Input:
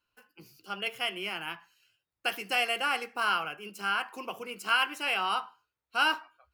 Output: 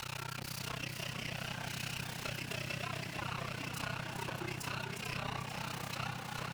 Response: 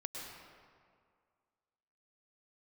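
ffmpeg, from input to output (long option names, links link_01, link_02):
-filter_complex "[0:a]aeval=exprs='val(0)+0.5*0.0178*sgn(val(0))':channel_layout=same,highpass=430,highshelf=frequency=10000:gain=-11.5,bandreject=frequency=1400:width=15,asplit=2[link_01][link_02];[link_02]alimiter=level_in=2.5dB:limit=-24dB:level=0:latency=1,volume=-2.5dB,volume=2dB[link_03];[link_01][link_03]amix=inputs=2:normalize=0,acompressor=threshold=-35dB:ratio=6,flanger=delay=17.5:depth=6.7:speed=0.64,aeval=exprs='max(val(0),0)':channel_layout=same,afreqshift=-130,tremolo=f=31:d=1,asplit=8[link_04][link_05][link_06][link_07][link_08][link_09][link_10][link_11];[link_05]adelay=444,afreqshift=43,volume=-6.5dB[link_12];[link_06]adelay=888,afreqshift=86,volume=-11.5dB[link_13];[link_07]adelay=1332,afreqshift=129,volume=-16.6dB[link_14];[link_08]adelay=1776,afreqshift=172,volume=-21.6dB[link_15];[link_09]adelay=2220,afreqshift=215,volume=-26.6dB[link_16];[link_10]adelay=2664,afreqshift=258,volume=-31.7dB[link_17];[link_11]adelay=3108,afreqshift=301,volume=-36.7dB[link_18];[link_04][link_12][link_13][link_14][link_15][link_16][link_17][link_18]amix=inputs=8:normalize=0,volume=6.5dB"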